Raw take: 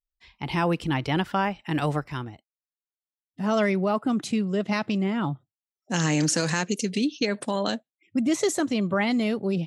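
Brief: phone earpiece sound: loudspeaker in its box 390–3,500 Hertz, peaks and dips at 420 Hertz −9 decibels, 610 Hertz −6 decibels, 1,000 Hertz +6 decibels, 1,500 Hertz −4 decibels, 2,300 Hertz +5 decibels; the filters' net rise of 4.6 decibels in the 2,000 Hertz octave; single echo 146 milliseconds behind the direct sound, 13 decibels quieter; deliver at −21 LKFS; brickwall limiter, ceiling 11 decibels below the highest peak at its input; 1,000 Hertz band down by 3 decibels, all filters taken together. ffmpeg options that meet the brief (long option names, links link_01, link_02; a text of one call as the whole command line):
ffmpeg -i in.wav -af "equalizer=frequency=1000:width_type=o:gain=-7,equalizer=frequency=2000:width_type=o:gain=6,alimiter=limit=-22.5dB:level=0:latency=1,highpass=390,equalizer=frequency=420:width_type=q:width=4:gain=-9,equalizer=frequency=610:width_type=q:width=4:gain=-6,equalizer=frequency=1000:width_type=q:width=4:gain=6,equalizer=frequency=1500:width_type=q:width=4:gain=-4,equalizer=frequency=2300:width_type=q:width=4:gain=5,lowpass=frequency=3500:width=0.5412,lowpass=frequency=3500:width=1.3066,aecho=1:1:146:0.224,volume=15dB" out.wav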